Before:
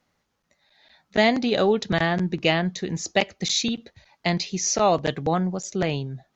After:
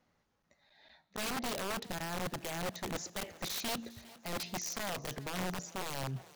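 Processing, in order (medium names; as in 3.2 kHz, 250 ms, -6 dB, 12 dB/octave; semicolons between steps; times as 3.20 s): treble shelf 2.2 kHz -5.5 dB; peak limiter -13.5 dBFS, peak gain reduction 6 dB; reverse; compression 4:1, threshold -33 dBFS, peak gain reduction 12.5 dB; reverse; feedback comb 58 Hz, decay 0.91 s, harmonics all, mix 40%; integer overflow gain 33 dB; on a send: thinning echo 405 ms, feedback 61%, high-pass 170 Hz, level -19.5 dB; on the sum: trim +1.5 dB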